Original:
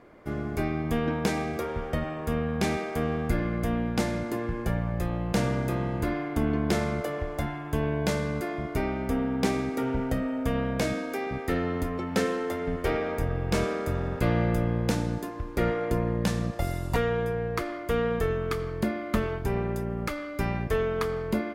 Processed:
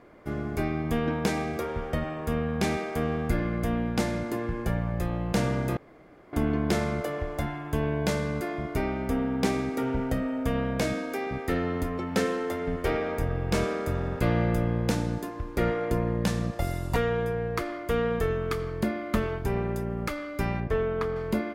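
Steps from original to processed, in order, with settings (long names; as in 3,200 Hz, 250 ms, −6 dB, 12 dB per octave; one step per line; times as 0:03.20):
0:05.77–0:06.33: fill with room tone
0:20.60–0:21.16: low-pass filter 1,900 Hz 6 dB per octave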